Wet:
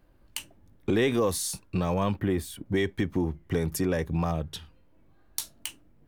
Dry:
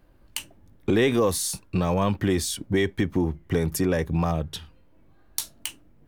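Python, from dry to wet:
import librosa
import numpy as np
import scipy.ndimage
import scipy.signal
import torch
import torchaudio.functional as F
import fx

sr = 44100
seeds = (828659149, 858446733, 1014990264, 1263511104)

y = fx.peak_eq(x, sr, hz=5700.0, db=-14.5, octaves=1.5, at=(2.19, 2.66))
y = y * librosa.db_to_amplitude(-3.5)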